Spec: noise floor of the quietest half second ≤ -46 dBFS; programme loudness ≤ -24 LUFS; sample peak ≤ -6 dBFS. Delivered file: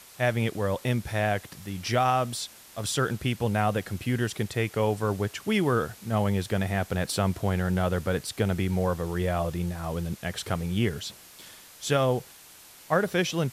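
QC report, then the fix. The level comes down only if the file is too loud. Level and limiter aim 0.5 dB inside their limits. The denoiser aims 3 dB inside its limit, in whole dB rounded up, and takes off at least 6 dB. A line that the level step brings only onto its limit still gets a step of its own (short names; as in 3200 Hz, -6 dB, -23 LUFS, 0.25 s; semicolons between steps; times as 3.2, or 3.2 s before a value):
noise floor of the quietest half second -51 dBFS: OK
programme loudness -28.0 LUFS: OK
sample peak -11.0 dBFS: OK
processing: none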